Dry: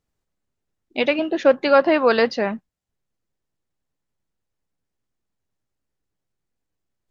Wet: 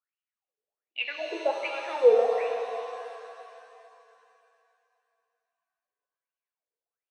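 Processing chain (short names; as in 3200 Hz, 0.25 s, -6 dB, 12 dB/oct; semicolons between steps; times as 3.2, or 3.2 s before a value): HPF 280 Hz 12 dB/oct; high shelf 4200 Hz -9 dB; notches 50/100/150/200/250/300/350/400/450/500 Hz; wah 1.3 Hz 440–2900 Hz, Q 14; shimmer reverb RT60 2.8 s, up +7 st, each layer -8 dB, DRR 3 dB; gain +4 dB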